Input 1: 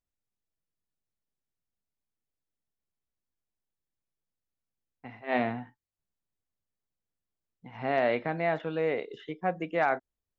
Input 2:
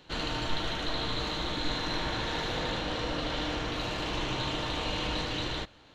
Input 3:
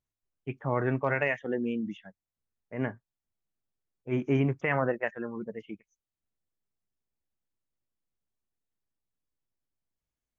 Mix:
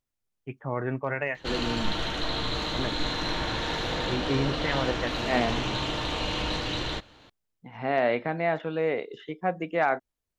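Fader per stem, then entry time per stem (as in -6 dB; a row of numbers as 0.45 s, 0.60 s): +2.0 dB, +2.5 dB, -2.0 dB; 0.00 s, 1.35 s, 0.00 s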